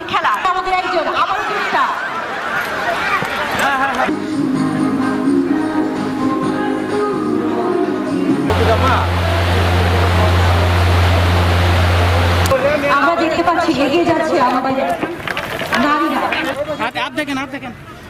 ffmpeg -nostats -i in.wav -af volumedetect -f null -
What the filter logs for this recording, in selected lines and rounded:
mean_volume: -15.4 dB
max_volume: -5.8 dB